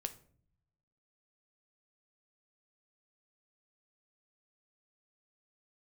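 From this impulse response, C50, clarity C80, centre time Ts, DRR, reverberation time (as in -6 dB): 15.0 dB, 20.0 dB, 6 ms, 7.5 dB, 0.55 s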